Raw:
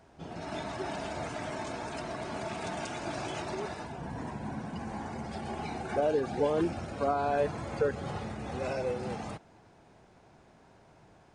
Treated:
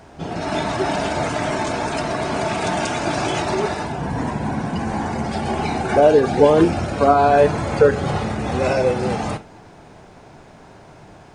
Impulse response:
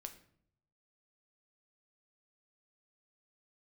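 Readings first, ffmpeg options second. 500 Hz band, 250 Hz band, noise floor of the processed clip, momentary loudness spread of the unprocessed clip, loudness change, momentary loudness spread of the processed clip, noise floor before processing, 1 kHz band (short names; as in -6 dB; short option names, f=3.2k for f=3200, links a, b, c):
+15.0 dB, +15.0 dB, -45 dBFS, 10 LU, +15.0 dB, 10 LU, -60 dBFS, +15.0 dB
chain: -filter_complex "[0:a]asplit=2[a][b];[1:a]atrim=start_sample=2205,atrim=end_sample=3969[c];[b][c]afir=irnorm=-1:irlink=0,volume=8.5dB[d];[a][d]amix=inputs=2:normalize=0,volume=7dB"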